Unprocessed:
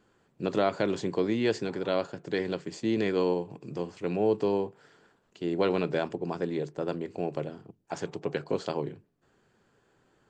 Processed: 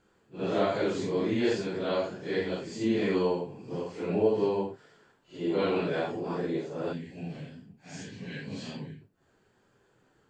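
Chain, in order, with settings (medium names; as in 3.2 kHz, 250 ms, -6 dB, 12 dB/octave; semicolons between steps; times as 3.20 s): phase randomisation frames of 200 ms; time-frequency box 6.93–9.01 s, 280–1500 Hz -14 dB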